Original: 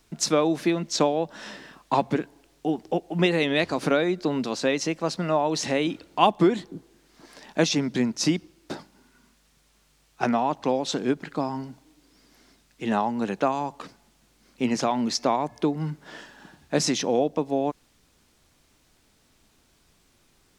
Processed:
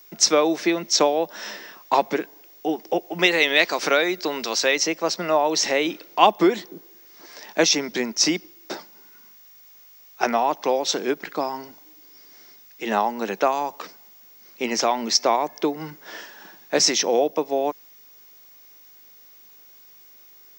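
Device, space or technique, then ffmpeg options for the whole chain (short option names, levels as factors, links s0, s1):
old television with a line whistle: -filter_complex "[0:a]highpass=f=230:w=0.5412,highpass=f=230:w=1.3066,equalizer=f=260:t=q:w=4:g=-10,equalizer=f=2100:t=q:w=4:g=4,equalizer=f=5600:t=q:w=4:g=8,lowpass=f=8000:w=0.5412,lowpass=f=8000:w=1.3066,aeval=exprs='val(0)+0.00282*sin(2*PI*15625*n/s)':c=same,asettb=1/sr,asplit=3[s0][s1][s2];[s0]atrim=end=3.194[s3];[s1]atrim=start=3.19:end=4.76,asetpts=PTS-STARTPTS,afade=t=in:d=0.004:c=qsin,afade=t=out:st=1.566:d=0.004:c=qsin,tiltshelf=f=840:g=-4[s4];[s2]atrim=start=4.756[s5];[s3][s4]acrossfade=d=0.004:c1=hsin:c2=qsin[s6];[s6][s5]acrossfade=d=0.004:c1=qsin:c2=hsin,volume=1.58"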